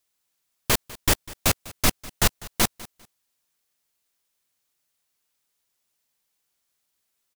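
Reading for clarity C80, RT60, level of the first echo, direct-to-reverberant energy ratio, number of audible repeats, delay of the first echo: no reverb audible, no reverb audible, −20.0 dB, no reverb audible, 2, 199 ms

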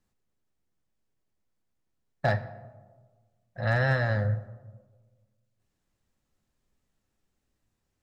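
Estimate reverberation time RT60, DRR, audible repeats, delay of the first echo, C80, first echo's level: 1.4 s, 11.0 dB, no echo audible, no echo audible, 16.0 dB, no echo audible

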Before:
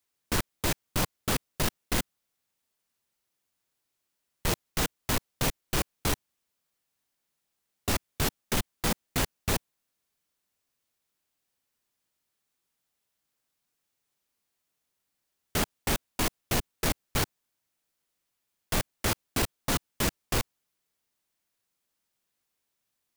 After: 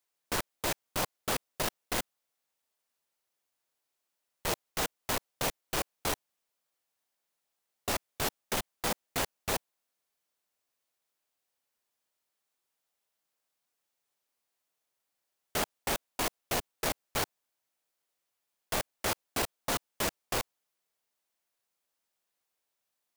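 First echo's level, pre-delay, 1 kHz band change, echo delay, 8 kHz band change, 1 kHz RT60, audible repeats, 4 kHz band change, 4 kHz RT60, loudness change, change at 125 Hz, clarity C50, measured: no echo audible, no reverb audible, −0.5 dB, no echo audible, −3.0 dB, no reverb audible, no echo audible, −3.0 dB, no reverb audible, −3.0 dB, −10.5 dB, no reverb audible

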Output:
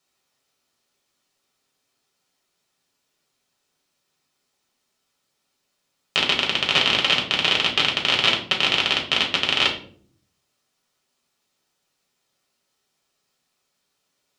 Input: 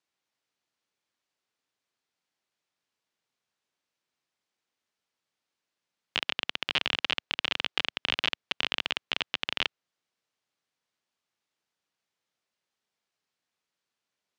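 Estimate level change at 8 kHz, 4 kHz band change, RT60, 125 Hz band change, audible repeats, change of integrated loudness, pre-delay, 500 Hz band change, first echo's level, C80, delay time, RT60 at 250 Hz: +13.5 dB, +11.0 dB, 0.55 s, +13.5 dB, no echo audible, +11.0 dB, 5 ms, +12.5 dB, no echo audible, 13.0 dB, no echo audible, 0.90 s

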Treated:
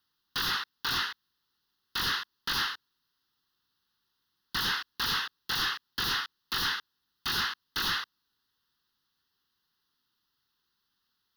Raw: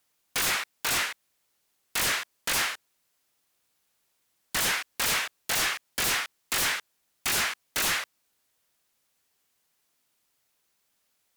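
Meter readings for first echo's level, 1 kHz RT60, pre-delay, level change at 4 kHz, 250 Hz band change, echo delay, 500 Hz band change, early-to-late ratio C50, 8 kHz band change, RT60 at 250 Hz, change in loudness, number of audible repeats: no echo audible, no reverb audible, no reverb audible, 0.0 dB, −2.0 dB, no echo audible, −10.0 dB, no reverb audible, −14.0 dB, no reverb audible, −3.5 dB, no echo audible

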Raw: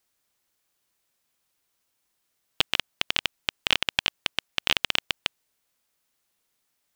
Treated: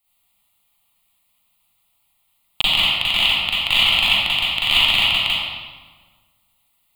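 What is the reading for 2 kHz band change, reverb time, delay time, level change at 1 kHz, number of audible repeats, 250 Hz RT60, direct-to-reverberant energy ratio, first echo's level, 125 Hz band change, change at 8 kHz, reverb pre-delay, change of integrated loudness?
+10.0 dB, 1.5 s, no echo audible, +9.0 dB, no echo audible, 1.6 s, −9.5 dB, no echo audible, +10.0 dB, +3.0 dB, 37 ms, +11.0 dB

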